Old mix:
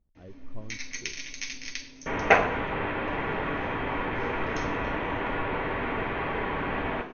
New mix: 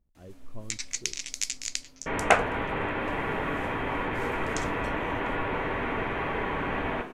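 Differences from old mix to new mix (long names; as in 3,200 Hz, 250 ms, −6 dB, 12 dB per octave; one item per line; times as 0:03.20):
first sound: send off
master: remove linear-phase brick-wall low-pass 6,500 Hz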